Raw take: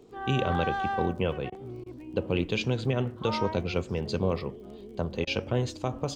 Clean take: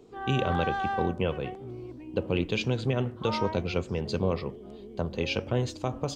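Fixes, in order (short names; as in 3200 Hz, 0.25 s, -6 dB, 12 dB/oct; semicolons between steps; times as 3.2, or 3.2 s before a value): de-click; interpolate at 1.5/1.84/5.25, 20 ms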